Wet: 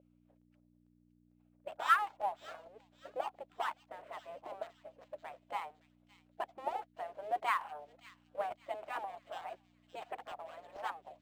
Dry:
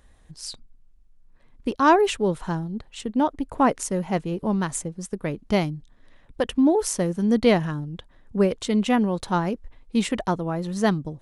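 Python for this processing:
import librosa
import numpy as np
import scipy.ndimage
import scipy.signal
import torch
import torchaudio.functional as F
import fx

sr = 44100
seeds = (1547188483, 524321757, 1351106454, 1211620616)

p1 = fx.dead_time(x, sr, dead_ms=0.13)
p2 = scipy.signal.sosfilt(scipy.signal.butter(4, 230.0, 'highpass', fs=sr, output='sos'), p1)
p3 = fx.spec_gate(p2, sr, threshold_db=-15, keep='weak')
p4 = fx.peak_eq(p3, sr, hz=2700.0, db=5.5, octaves=1.1)
p5 = fx.add_hum(p4, sr, base_hz=60, snr_db=11)
p6 = fx.auto_wah(p5, sr, base_hz=560.0, top_hz=2400.0, q=7.4, full_db=-15.5, direction='up')
p7 = p6 + fx.echo_wet_highpass(p6, sr, ms=565, feedback_pct=39, hz=3700.0, wet_db=-9.0, dry=0)
p8 = fx.buffer_crackle(p7, sr, first_s=0.41, period_s=0.45, block=128, kind='repeat')
p9 = np.interp(np.arange(len(p8)), np.arange(len(p8))[::4], p8[::4])
y = p9 * librosa.db_to_amplitude(9.5)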